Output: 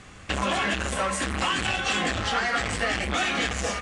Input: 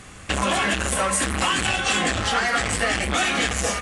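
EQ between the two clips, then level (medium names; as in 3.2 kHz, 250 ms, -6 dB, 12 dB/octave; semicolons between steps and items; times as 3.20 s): low-pass 6.5 kHz 12 dB/octave; -3.5 dB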